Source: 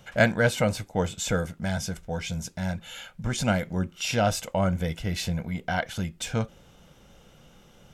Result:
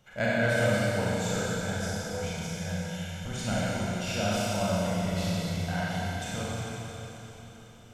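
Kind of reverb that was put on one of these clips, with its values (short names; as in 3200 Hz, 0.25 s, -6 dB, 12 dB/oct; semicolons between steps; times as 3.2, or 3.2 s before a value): Schroeder reverb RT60 3.9 s, combs from 30 ms, DRR -8.5 dB; gain -11 dB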